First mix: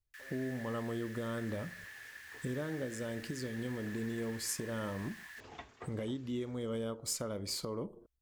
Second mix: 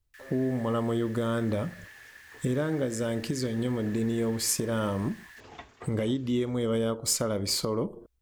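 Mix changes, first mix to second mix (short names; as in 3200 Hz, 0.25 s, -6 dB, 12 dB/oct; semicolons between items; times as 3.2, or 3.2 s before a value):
speech +10.0 dB; second sound +3.5 dB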